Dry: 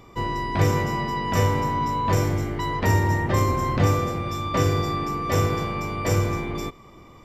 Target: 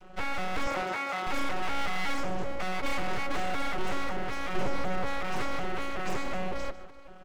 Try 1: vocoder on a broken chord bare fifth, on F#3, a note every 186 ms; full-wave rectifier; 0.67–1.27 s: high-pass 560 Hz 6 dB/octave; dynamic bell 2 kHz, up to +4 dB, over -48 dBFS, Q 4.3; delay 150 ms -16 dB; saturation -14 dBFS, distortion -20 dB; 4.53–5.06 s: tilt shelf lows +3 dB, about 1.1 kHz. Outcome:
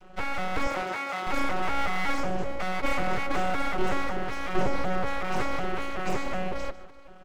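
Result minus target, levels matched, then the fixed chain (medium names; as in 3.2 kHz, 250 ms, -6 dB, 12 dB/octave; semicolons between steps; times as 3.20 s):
saturation: distortion -9 dB
vocoder on a broken chord bare fifth, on F#3, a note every 186 ms; full-wave rectifier; 0.67–1.27 s: high-pass 560 Hz 6 dB/octave; dynamic bell 2 kHz, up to +4 dB, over -48 dBFS, Q 4.3; delay 150 ms -16 dB; saturation -21.5 dBFS, distortion -12 dB; 4.53–5.06 s: tilt shelf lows +3 dB, about 1.1 kHz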